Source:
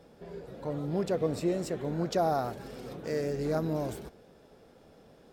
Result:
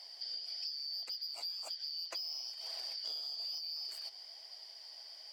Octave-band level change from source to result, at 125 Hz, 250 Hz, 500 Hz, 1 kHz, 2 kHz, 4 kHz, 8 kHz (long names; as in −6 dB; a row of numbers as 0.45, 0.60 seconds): below −40 dB, below −40 dB, −30.5 dB, −23.5 dB, −12.5 dB, +12.5 dB, −4.5 dB